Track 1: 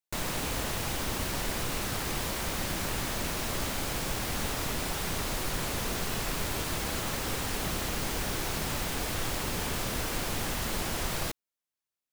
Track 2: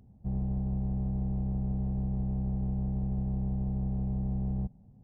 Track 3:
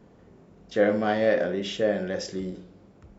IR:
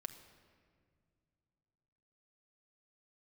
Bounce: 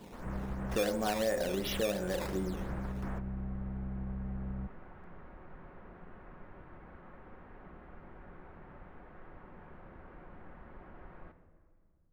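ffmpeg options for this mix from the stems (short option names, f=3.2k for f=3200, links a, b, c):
-filter_complex "[0:a]lowpass=f=1.7k:w=0.5412,lowpass=f=1.7k:w=1.3066,volume=-8dB,asplit=2[a][b];[b]volume=-7dB[c];[1:a]volume=-5.5dB[d];[2:a]equalizer=f=910:w=4.4:g=9,acrusher=samples=10:mix=1:aa=0.000001:lfo=1:lforange=10:lforate=2.8,volume=-0.5dB,asplit=3[e][f][g];[f]volume=-3.5dB[h];[g]apad=whole_len=534925[i];[a][i]sidechaingate=range=-33dB:threshold=-52dB:ratio=16:detection=peak[j];[3:a]atrim=start_sample=2205[k];[c][h]amix=inputs=2:normalize=0[l];[l][k]afir=irnorm=-1:irlink=0[m];[j][d][e][m]amix=inputs=4:normalize=0,equalizer=f=120:t=o:w=0.27:g=-8,acompressor=threshold=-33dB:ratio=3"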